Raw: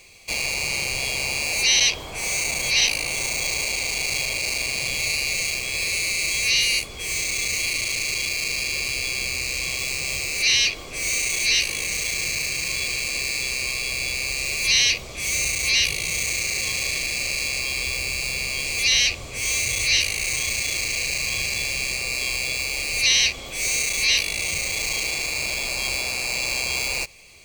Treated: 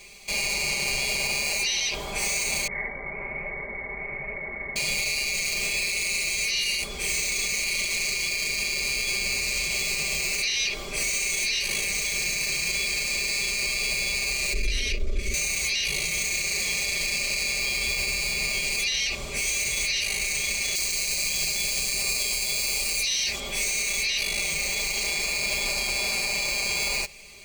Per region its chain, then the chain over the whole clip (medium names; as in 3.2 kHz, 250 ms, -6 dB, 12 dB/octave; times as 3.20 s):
2.67–4.76 s: brick-wall FIR low-pass 2.3 kHz + flange 1.2 Hz, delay 4.2 ms, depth 9.2 ms, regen +71%
14.53–15.34 s: tilt EQ -4 dB/octave + valve stage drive 17 dB, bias 0.45 + static phaser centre 360 Hz, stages 4
20.75–23.40 s: treble shelf 5 kHz +8 dB + bands offset in time highs, lows 30 ms, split 2.1 kHz
whole clip: band-stop 2.7 kHz, Q 26; comb 5 ms, depth 83%; peak limiter -17 dBFS